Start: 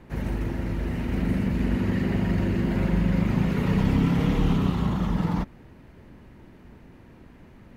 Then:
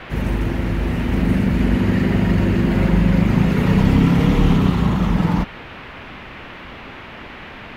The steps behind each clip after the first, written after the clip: band noise 200–2700 Hz -45 dBFS; trim +7.5 dB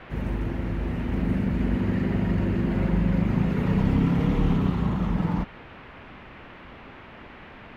treble shelf 2.9 kHz -9 dB; trim -7.5 dB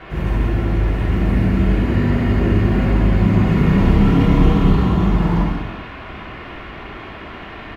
reverse; upward compressor, threshold -37 dBFS; reverse; comb 2.8 ms, depth 32%; gated-style reverb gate 460 ms falling, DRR -3 dB; trim +4.5 dB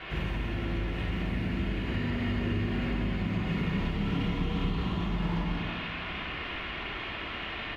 peaking EQ 3.1 kHz +11.5 dB 1.6 oct; compression 5:1, threshold -20 dBFS, peak gain reduction 12 dB; filtered feedback delay 129 ms, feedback 71%, level -11 dB; trim -8 dB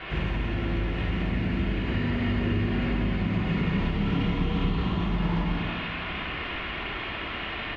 Bessel low-pass 4.6 kHz, order 2; trim +4 dB

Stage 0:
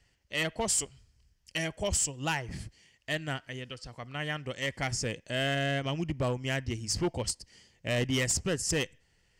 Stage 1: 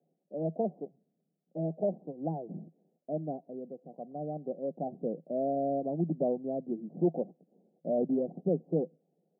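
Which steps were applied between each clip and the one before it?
Chebyshev band-pass 160–750 Hz, order 5; trim +3.5 dB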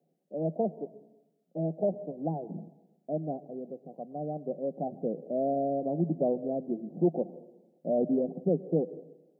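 plate-style reverb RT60 0.99 s, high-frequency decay 1×, pre-delay 105 ms, DRR 16.5 dB; trim +2 dB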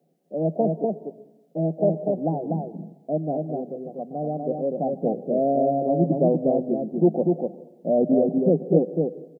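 delay 244 ms -3.5 dB; trim +7 dB

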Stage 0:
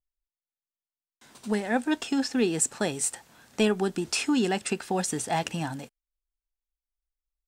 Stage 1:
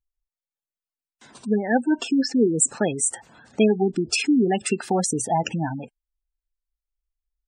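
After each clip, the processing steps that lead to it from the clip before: spectral gate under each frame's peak -15 dB strong; trim +6 dB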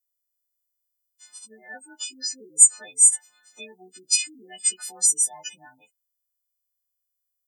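partials quantised in pitch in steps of 3 st; differentiator; trim -2.5 dB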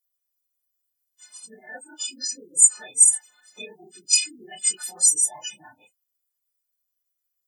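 phase randomisation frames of 50 ms; trim +1.5 dB

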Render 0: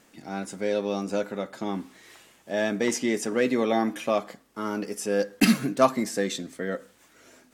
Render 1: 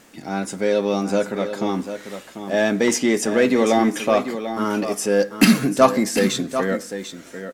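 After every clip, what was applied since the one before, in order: in parallel at -4.5 dB: saturation -22.5 dBFS, distortion -8 dB; on the sum: delay 743 ms -10 dB; trim +4 dB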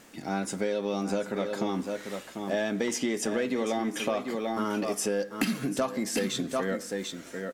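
dynamic bell 3.2 kHz, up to +4 dB, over -45 dBFS, Q 5.4; compression 10:1, threshold -22 dBFS, peak gain reduction 15 dB; trim -3 dB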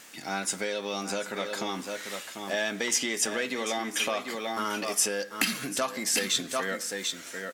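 tilt shelf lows -8 dB, about 830 Hz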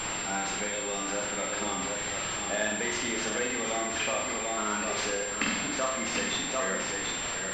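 zero-crossing glitches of -24.5 dBFS; flutter echo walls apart 8.1 m, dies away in 0.79 s; class-D stage that switches slowly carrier 7.4 kHz; trim -3 dB

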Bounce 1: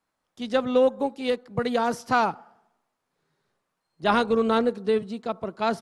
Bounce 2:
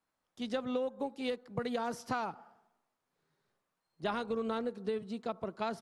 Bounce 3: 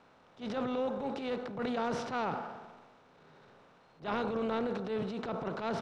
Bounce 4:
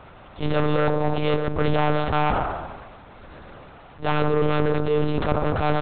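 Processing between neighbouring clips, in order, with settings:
compression 6:1, threshold -26 dBFS, peak gain reduction 10.5 dB; trim -5.5 dB
spectral levelling over time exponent 0.6; distance through air 120 m; transient shaper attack -11 dB, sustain +7 dB
in parallel at -3.5 dB: sine folder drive 10 dB, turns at -20.5 dBFS; on the sum: monotone LPC vocoder at 8 kHz 150 Hz; trim +4 dB

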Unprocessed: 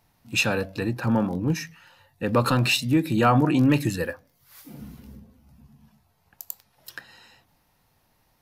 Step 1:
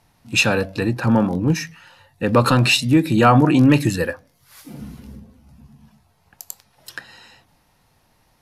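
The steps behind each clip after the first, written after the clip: low-pass 12 kHz 24 dB/octave; trim +6 dB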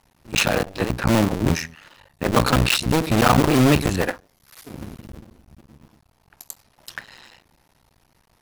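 cycle switcher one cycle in 2, muted; in parallel at -7.5 dB: integer overflow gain 11 dB; on the sum: trim -1 dB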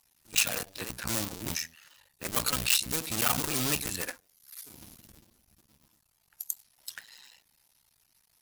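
coarse spectral quantiser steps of 15 dB; pre-emphasis filter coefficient 0.9; trim +1 dB

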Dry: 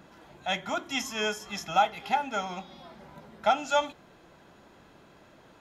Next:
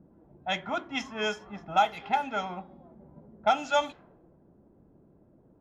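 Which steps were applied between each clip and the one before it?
level-controlled noise filter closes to 330 Hz, open at -22.5 dBFS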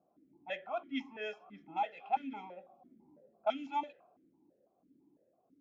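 stepped vowel filter 6 Hz; trim +1 dB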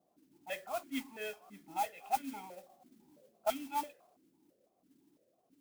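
modulation noise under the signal 13 dB; trim -1 dB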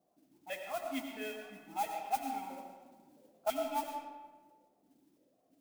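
reverberation RT60 1.3 s, pre-delay 55 ms, DRR 3.5 dB; trim -1 dB

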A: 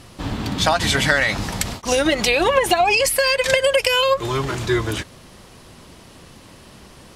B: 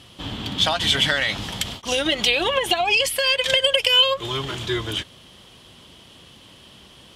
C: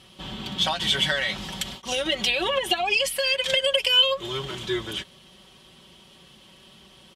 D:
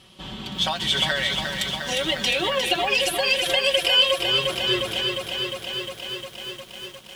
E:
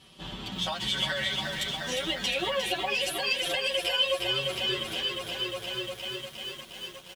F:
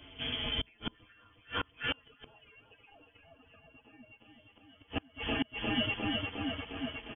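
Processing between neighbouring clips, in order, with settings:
high-pass 47 Hz; peaking EQ 3.2 kHz +15 dB 0.42 oct; trim -6 dB
comb 5.3 ms; trim -5.5 dB
bit-crushed delay 355 ms, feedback 80%, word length 8-bit, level -5.5 dB
compression 1.5:1, threshold -29 dBFS, peak gain reduction 6 dB; endless flanger 9.9 ms +0.61 Hz
inverted gate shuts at -22 dBFS, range -33 dB; frequency inversion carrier 3.3 kHz; trim +3 dB

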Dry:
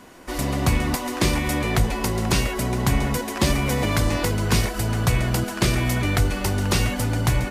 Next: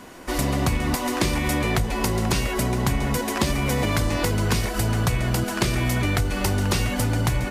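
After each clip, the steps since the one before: compression, threshold -22 dBFS, peak gain reduction 8.5 dB; trim +3.5 dB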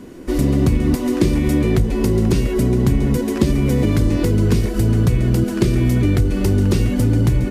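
resonant low shelf 540 Hz +11 dB, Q 1.5; trim -4 dB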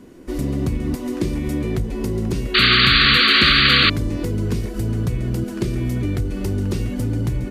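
painted sound noise, 2.54–3.90 s, 1.1–4.7 kHz -8 dBFS; trim -6.5 dB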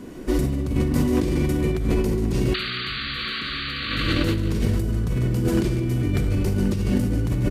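feedback delay 148 ms, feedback 52%, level -11.5 dB; on a send at -3 dB: reverberation RT60 0.85 s, pre-delay 38 ms; on the sum: compressor with a negative ratio -23 dBFS, ratio -1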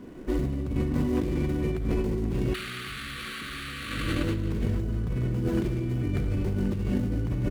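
median filter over 9 samples; trim -5.5 dB

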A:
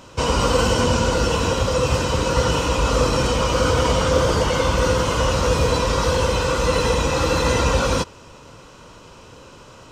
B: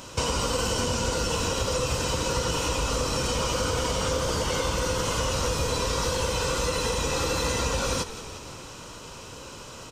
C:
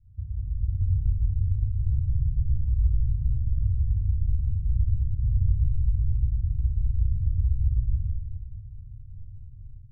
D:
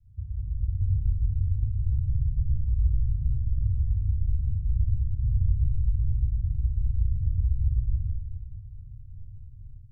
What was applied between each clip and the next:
treble shelf 4.4 kHz +10.5 dB; compression 6:1, threshold -24 dBFS, peak gain reduction 11.5 dB; frequency-shifting echo 174 ms, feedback 62%, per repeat -39 Hz, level -13 dB
inverse Chebyshev low-pass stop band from 560 Hz, stop band 80 dB; level rider gain up to 9 dB; simulated room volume 2400 m³, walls furnished, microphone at 3.8 m; trim -5 dB
vibrato 2.5 Hz 53 cents; trim -1 dB

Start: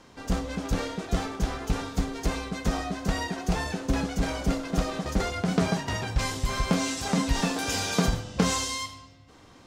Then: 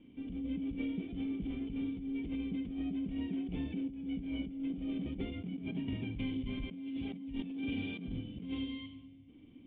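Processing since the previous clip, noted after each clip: cascade formant filter i; compressor with a negative ratio -39 dBFS, ratio -1; trim +1 dB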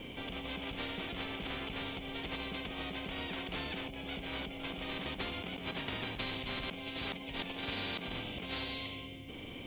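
spectrum-flattening compressor 4:1; trim +1 dB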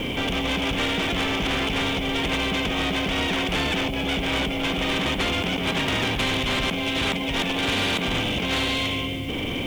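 waveshaping leveller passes 3; trim +7.5 dB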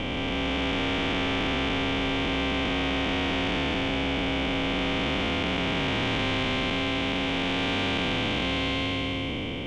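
spectral blur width 665 ms; distance through air 97 m

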